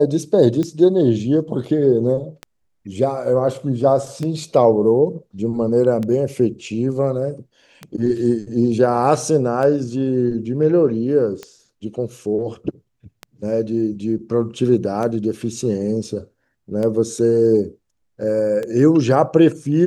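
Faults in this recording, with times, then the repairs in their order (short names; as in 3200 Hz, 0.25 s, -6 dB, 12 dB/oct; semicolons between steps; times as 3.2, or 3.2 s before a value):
tick 33 1/3 rpm -14 dBFS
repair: de-click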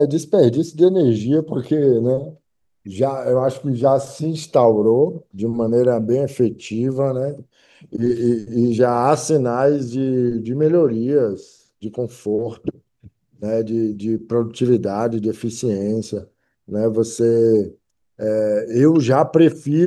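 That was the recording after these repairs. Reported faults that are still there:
none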